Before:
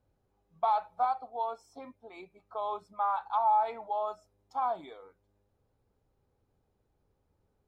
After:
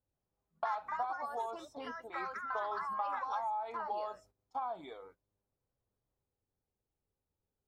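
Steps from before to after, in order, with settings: gate -58 dBFS, range -15 dB; compressor 6:1, threshold -35 dBFS, peak gain reduction 12 dB; echoes that change speed 0.129 s, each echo +4 st, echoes 2

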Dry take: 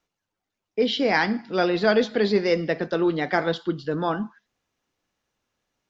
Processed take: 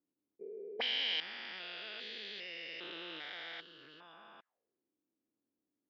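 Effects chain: stepped spectrum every 0.4 s; auto-wah 290–3000 Hz, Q 4.7, up, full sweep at -28 dBFS; level quantiser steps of 11 dB; gain +9 dB

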